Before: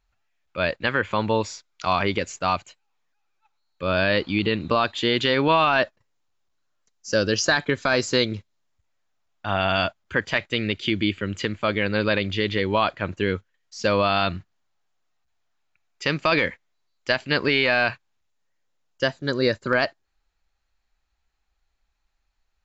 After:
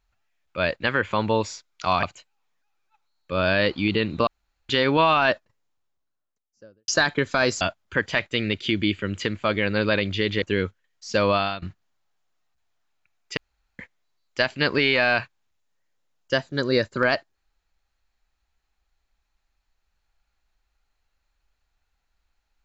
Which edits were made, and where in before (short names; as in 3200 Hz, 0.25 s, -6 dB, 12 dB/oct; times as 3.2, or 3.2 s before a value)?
2.03–2.54 cut
4.78–5.2 room tone
5.83–7.39 studio fade out
8.12–9.8 cut
12.61–13.12 cut
14.05–14.32 fade out, to -21 dB
16.07–16.49 room tone